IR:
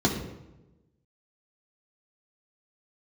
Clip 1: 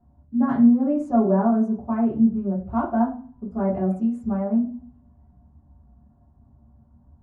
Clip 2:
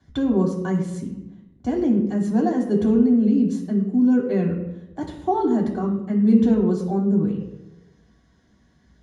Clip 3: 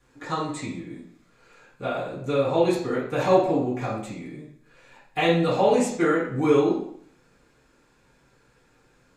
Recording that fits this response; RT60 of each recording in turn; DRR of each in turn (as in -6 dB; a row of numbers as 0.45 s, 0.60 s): 2; no single decay rate, 1.0 s, 0.60 s; -8.5 dB, -2.5 dB, -10.0 dB